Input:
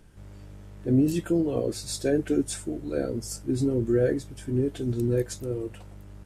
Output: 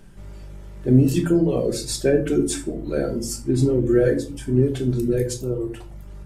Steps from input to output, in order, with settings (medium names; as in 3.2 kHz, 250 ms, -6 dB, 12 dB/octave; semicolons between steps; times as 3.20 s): reverb removal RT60 0.7 s; 4.97–5.73 s: peaking EQ 730 Hz -> 3.1 kHz -12 dB 0.54 oct; reverberation RT60 0.45 s, pre-delay 5 ms, DRR 4.5 dB; trim +5.5 dB